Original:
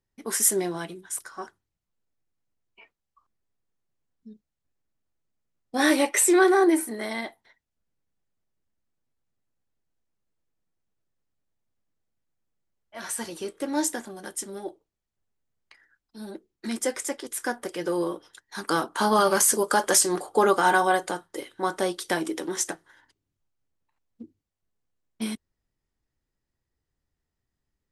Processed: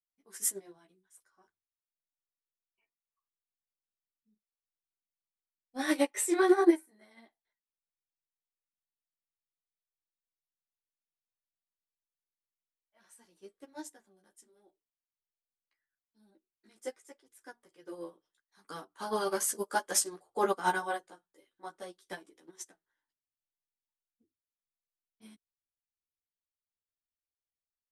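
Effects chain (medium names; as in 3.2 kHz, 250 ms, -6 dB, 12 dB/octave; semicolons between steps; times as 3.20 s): chorus voices 2, 0.69 Hz, delay 13 ms, depth 2.7 ms; upward expansion 2.5:1, over -35 dBFS; trim +1 dB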